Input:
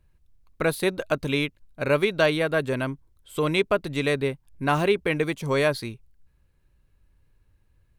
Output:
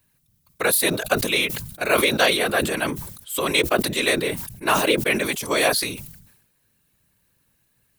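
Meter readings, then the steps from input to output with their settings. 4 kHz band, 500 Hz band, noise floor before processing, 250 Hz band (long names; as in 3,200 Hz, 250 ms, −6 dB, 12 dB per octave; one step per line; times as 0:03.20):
+9.5 dB, +0.5 dB, −65 dBFS, +1.0 dB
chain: random phases in short frames
RIAA equalisation recording
level that may fall only so fast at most 64 dB per second
level +3 dB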